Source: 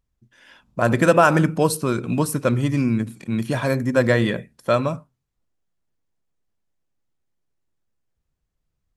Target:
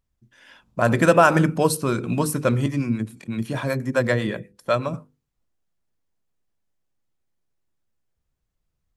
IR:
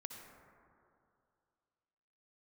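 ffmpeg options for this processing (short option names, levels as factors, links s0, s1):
-filter_complex "[0:a]bandreject=f=50:t=h:w=6,bandreject=f=100:t=h:w=6,bandreject=f=150:t=h:w=6,bandreject=f=200:t=h:w=6,bandreject=f=250:t=h:w=6,bandreject=f=300:t=h:w=6,bandreject=f=350:t=h:w=6,bandreject=f=400:t=h:w=6,bandreject=f=450:t=h:w=6,bandreject=f=500:t=h:w=6,asettb=1/sr,asplit=3[s0][s1][s2];[s0]atrim=end=2.664[s3];[s1]atrim=start=2.66:end=4.94,asetpts=PTS-STARTPTS,afade=t=in:d=0.004:c=qsin,afade=t=out:st=2.276:d=0.004:c=qsin,acrossover=split=440[s4][s5];[s4]aeval=exprs='val(0)*(1-0.7/2+0.7/2*cos(2*PI*8*n/s))':c=same[s6];[s5]aeval=exprs='val(0)*(1-0.7/2-0.7/2*cos(2*PI*8*n/s))':c=same[s7];[s6][s7]amix=inputs=2:normalize=0[s8];[s2]atrim=start=4.936[s9];[s3][s8]acrossfade=d=0.004:c1=hsin:c2=qsin[s10];[s10][s9]acrossfade=d=0.004:c1=qsin:c2=hsin"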